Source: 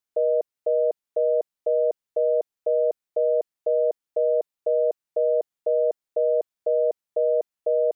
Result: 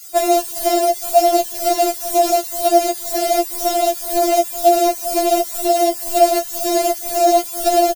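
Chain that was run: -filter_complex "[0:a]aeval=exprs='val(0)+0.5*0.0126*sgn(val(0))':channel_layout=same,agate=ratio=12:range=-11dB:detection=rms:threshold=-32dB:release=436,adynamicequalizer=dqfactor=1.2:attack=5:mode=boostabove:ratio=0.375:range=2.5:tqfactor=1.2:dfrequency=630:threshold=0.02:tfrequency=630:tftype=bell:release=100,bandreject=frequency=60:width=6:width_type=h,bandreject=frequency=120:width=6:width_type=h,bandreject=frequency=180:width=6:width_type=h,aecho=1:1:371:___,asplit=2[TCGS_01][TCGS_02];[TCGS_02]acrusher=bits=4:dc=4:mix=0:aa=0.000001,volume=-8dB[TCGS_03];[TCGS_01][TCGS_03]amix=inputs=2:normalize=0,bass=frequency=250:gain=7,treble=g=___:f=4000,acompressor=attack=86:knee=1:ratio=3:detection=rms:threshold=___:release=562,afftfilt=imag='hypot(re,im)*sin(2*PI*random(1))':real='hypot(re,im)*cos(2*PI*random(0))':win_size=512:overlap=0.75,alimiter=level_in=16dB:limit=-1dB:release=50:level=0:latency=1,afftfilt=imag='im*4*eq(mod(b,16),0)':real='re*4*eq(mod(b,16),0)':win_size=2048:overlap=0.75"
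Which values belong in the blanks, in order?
0.106, 13, -17dB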